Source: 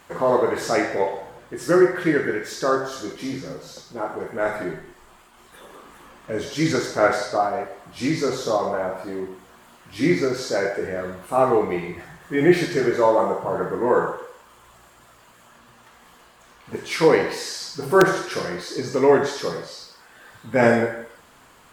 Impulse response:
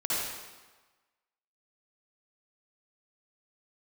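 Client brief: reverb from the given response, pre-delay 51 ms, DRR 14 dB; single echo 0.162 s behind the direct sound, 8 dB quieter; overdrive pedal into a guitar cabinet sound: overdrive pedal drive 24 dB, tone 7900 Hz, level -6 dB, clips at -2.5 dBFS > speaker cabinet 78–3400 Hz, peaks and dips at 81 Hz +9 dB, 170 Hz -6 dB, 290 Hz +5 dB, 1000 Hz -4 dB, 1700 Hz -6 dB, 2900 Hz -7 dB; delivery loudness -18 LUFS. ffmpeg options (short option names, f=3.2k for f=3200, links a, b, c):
-filter_complex "[0:a]aecho=1:1:162:0.398,asplit=2[a][b];[1:a]atrim=start_sample=2205,adelay=51[c];[b][c]afir=irnorm=-1:irlink=0,volume=-22.5dB[d];[a][d]amix=inputs=2:normalize=0,asplit=2[e][f];[f]highpass=f=720:p=1,volume=24dB,asoftclip=type=tanh:threshold=-2.5dB[g];[e][g]amix=inputs=2:normalize=0,lowpass=f=7.9k:p=1,volume=-6dB,highpass=78,equalizer=f=81:t=q:w=4:g=9,equalizer=f=170:t=q:w=4:g=-6,equalizer=f=290:t=q:w=4:g=5,equalizer=f=1k:t=q:w=4:g=-4,equalizer=f=1.7k:t=q:w=4:g=-6,equalizer=f=2.9k:t=q:w=4:g=-7,lowpass=f=3.4k:w=0.5412,lowpass=f=3.4k:w=1.3066,volume=-4dB"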